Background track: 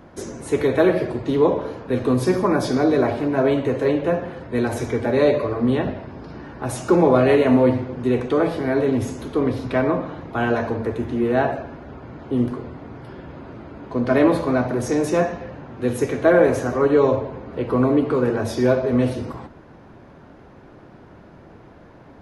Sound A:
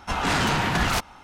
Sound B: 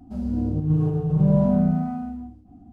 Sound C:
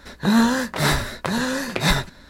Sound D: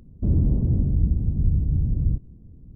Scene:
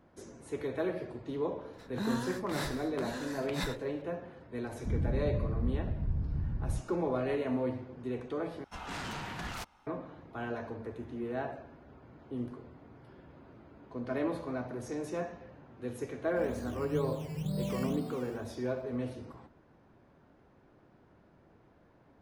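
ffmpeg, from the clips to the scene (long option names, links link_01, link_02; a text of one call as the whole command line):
ffmpeg -i bed.wav -i cue0.wav -i cue1.wav -i cue2.wav -i cue3.wav -filter_complex "[0:a]volume=-17dB[link_01];[2:a]acrusher=samples=14:mix=1:aa=0.000001:lfo=1:lforange=8.4:lforate=2.1[link_02];[link_01]asplit=2[link_03][link_04];[link_03]atrim=end=8.644[link_05];[1:a]atrim=end=1.23,asetpts=PTS-STARTPTS,volume=-17dB[link_06];[link_04]atrim=start=9.866[link_07];[3:a]atrim=end=2.29,asetpts=PTS-STARTPTS,volume=-17.5dB,afade=type=in:duration=0.004:curve=hsin,afade=type=out:start_time=2.286:duration=0.004:curve=hsin,adelay=1730[link_08];[4:a]atrim=end=2.75,asetpts=PTS-STARTPTS,volume=-12dB,afade=type=in:duration=0.004:curve=hsin,afade=type=out:start_time=2.746:duration=0.004:curve=hsin,adelay=4630[link_09];[link_02]atrim=end=2.72,asetpts=PTS-STARTPTS,volume=-16.5dB,afade=type=in:duration=0.004:curve=hsin,afade=type=out:start_time=2.716:duration=0.004:curve=hsin,adelay=16250[link_10];[link_05][link_06]acrossfade=duration=0.004:curve1=hsin:curve2=hsin[link_11];[link_11][link_07]acrossfade=duration=0.004:curve1=hsin:curve2=hsin[link_12];[link_12][link_08][link_09][link_10]amix=inputs=4:normalize=0" out.wav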